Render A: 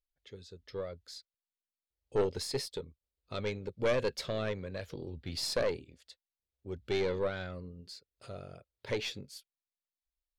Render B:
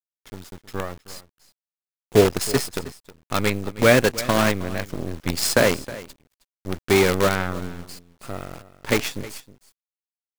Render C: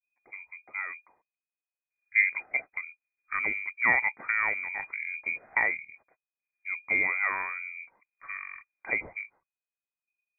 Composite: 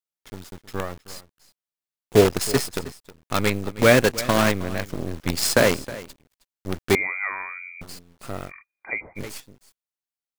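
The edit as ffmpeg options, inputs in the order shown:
-filter_complex "[2:a]asplit=2[a][b];[1:a]asplit=3[c][d][e];[c]atrim=end=6.952[f];[a]atrim=start=6.948:end=7.812[g];[d]atrim=start=7.808:end=8.52[h];[b]atrim=start=8.46:end=9.21[i];[e]atrim=start=9.15[j];[f][g]acrossfade=d=0.004:c1=hsin:c2=hsin[k];[k][h]acrossfade=d=0.004:c1=hsin:c2=hsin[l];[l][i]acrossfade=d=0.06:c1=tri:c2=tri[m];[m][j]acrossfade=d=0.06:c1=tri:c2=tri"

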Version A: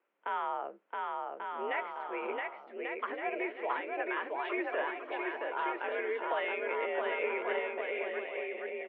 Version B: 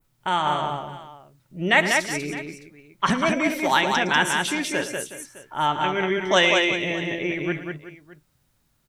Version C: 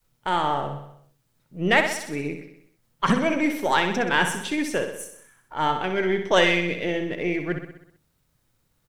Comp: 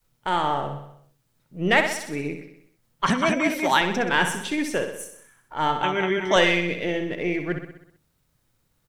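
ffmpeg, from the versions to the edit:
-filter_complex "[1:a]asplit=2[a][b];[2:a]asplit=3[c][d][e];[c]atrim=end=3.062[f];[a]atrim=start=3.058:end=3.812[g];[d]atrim=start=3.808:end=5.832[h];[b]atrim=start=5.828:end=6.362[i];[e]atrim=start=6.358[j];[f][g]acrossfade=d=0.004:c1=hsin:c2=hsin[k];[k][h]acrossfade=d=0.004:c1=hsin:c2=hsin[l];[l][i]acrossfade=d=0.004:c1=hsin:c2=hsin[m];[m][j]acrossfade=d=0.004:c1=hsin:c2=hsin"

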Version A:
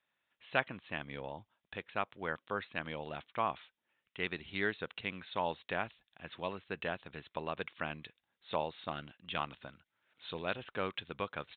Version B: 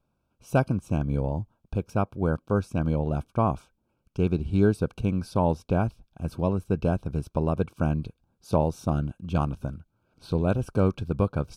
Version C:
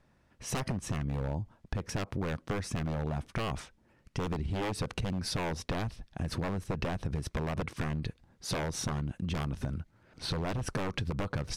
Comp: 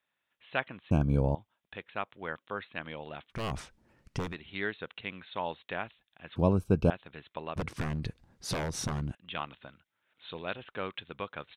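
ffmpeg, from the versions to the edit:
-filter_complex "[1:a]asplit=2[a][b];[2:a]asplit=2[c][d];[0:a]asplit=5[e][f][g][h][i];[e]atrim=end=0.912[j];[a]atrim=start=0.908:end=1.352[k];[f]atrim=start=1.348:end=3.45[l];[c]atrim=start=3.29:end=4.37[m];[g]atrim=start=4.21:end=6.362[n];[b]atrim=start=6.358:end=6.902[o];[h]atrim=start=6.898:end=7.562[p];[d]atrim=start=7.558:end=9.152[q];[i]atrim=start=9.148[r];[j][k]acrossfade=d=0.004:c1=hsin:c2=hsin[s];[s][l]acrossfade=d=0.004:c1=hsin:c2=hsin[t];[t][m]acrossfade=d=0.16:c1=tri:c2=tri[u];[u][n]acrossfade=d=0.16:c1=tri:c2=tri[v];[v][o]acrossfade=d=0.004:c1=hsin:c2=hsin[w];[w][p]acrossfade=d=0.004:c1=hsin:c2=hsin[x];[x][q]acrossfade=d=0.004:c1=hsin:c2=hsin[y];[y][r]acrossfade=d=0.004:c1=hsin:c2=hsin"

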